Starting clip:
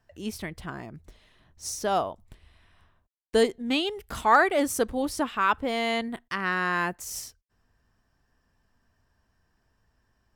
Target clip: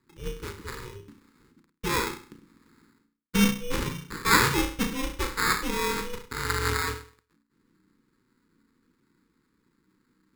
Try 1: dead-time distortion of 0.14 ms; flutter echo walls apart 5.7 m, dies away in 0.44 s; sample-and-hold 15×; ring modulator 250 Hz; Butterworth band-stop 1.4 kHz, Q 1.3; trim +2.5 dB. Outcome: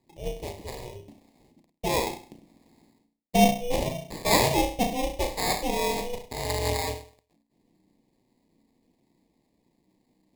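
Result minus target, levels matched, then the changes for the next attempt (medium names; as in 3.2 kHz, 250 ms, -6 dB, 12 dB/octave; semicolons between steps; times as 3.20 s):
500 Hz band +5.5 dB
change: Butterworth band-stop 670 Hz, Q 1.3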